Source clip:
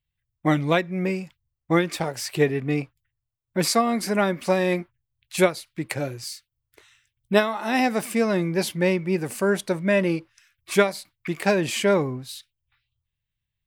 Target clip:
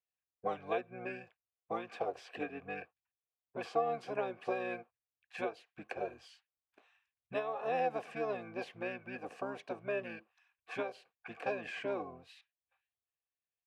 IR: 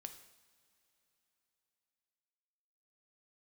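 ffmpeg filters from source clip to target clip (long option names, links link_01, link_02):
-filter_complex "[0:a]acrossover=split=550|1900|8000[link_01][link_02][link_03][link_04];[link_01]acompressor=threshold=-28dB:ratio=4[link_05];[link_02]acompressor=threshold=-32dB:ratio=4[link_06];[link_03]acompressor=threshold=-32dB:ratio=4[link_07];[link_04]acompressor=threshold=-45dB:ratio=4[link_08];[link_05][link_06][link_07][link_08]amix=inputs=4:normalize=0,asplit=3[link_09][link_10][link_11];[link_09]bandpass=frequency=730:width_type=q:width=8,volume=0dB[link_12];[link_10]bandpass=frequency=1090:width_type=q:width=8,volume=-6dB[link_13];[link_11]bandpass=frequency=2440:width_type=q:width=8,volume=-9dB[link_14];[link_12][link_13][link_14]amix=inputs=3:normalize=0,asplit=2[link_15][link_16];[link_16]asetrate=29433,aresample=44100,atempo=1.49831,volume=-1dB[link_17];[link_15][link_17]amix=inputs=2:normalize=0"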